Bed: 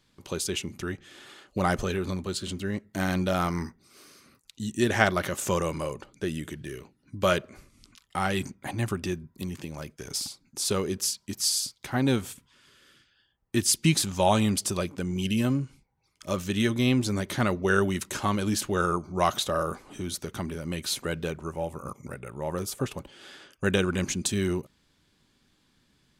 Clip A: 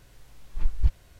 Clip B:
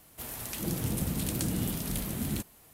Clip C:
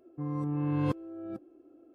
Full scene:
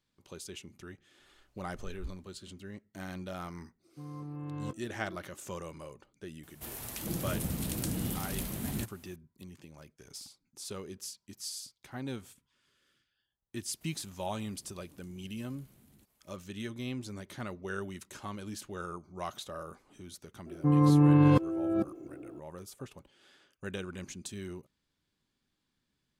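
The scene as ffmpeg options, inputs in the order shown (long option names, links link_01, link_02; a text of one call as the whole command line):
ffmpeg -i bed.wav -i cue0.wav -i cue1.wav -i cue2.wav -filter_complex "[3:a]asplit=2[link_01][link_02];[2:a]asplit=2[link_03][link_04];[0:a]volume=-14.5dB[link_05];[1:a]asplit=2[link_06][link_07];[link_07]adelay=11.9,afreqshift=1.9[link_08];[link_06][link_08]amix=inputs=2:normalize=1[link_09];[link_01]asplit=2[link_10][link_11];[link_11]adelay=22,volume=-13dB[link_12];[link_10][link_12]amix=inputs=2:normalize=0[link_13];[link_04]acompressor=threshold=-42dB:ratio=6:attack=3.2:release=140:knee=1:detection=peak[link_14];[link_02]alimiter=level_in=23.5dB:limit=-1dB:release=50:level=0:latency=1[link_15];[link_09]atrim=end=1.19,asetpts=PTS-STARTPTS,volume=-17.5dB,afade=type=in:duration=0.004:curve=hsin,afade=type=out:start_time=1.186:duration=0.004:curve=hsin,adelay=1190[link_16];[link_13]atrim=end=1.94,asetpts=PTS-STARTPTS,volume=-9.5dB,afade=type=in:duration=0.1,afade=type=out:start_time=1.84:duration=0.1,adelay=3790[link_17];[link_03]atrim=end=2.73,asetpts=PTS-STARTPTS,volume=-3dB,afade=type=in:duration=0.004:curve=hsin,afade=type=out:start_time=2.726:duration=0.004:curve=hsin,adelay=6430[link_18];[link_14]atrim=end=2.73,asetpts=PTS-STARTPTS,volume=-17dB,afade=type=in:duration=0.004:curve=hsin,afade=type=out:start_time=2.726:duration=0.004:curve=hsin,adelay=13630[link_19];[link_15]atrim=end=1.94,asetpts=PTS-STARTPTS,volume=-13dB,afade=type=in:duration=0.004:curve=hsin,afade=type=out:start_time=1.936:duration=0.004:curve=hsin,adelay=20460[link_20];[link_05][link_16][link_17][link_18][link_19][link_20]amix=inputs=6:normalize=0" out.wav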